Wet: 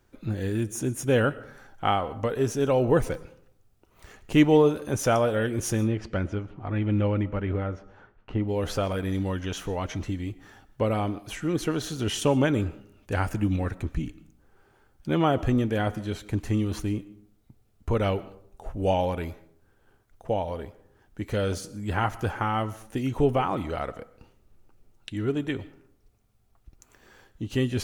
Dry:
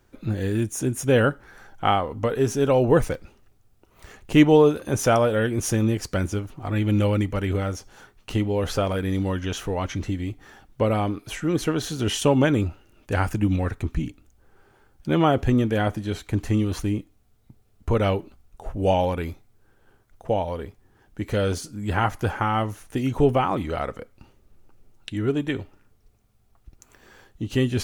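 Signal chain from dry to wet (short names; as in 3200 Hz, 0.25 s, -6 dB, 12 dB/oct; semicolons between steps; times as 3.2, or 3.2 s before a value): 5.83–8.47 LPF 3200 Hz -> 1600 Hz 12 dB/oct; digital reverb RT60 0.62 s, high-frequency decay 0.5×, pre-delay 80 ms, DRR 18.5 dB; gain -3.5 dB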